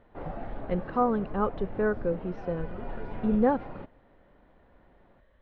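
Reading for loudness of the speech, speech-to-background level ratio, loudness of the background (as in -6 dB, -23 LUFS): -29.5 LUFS, 11.5 dB, -41.0 LUFS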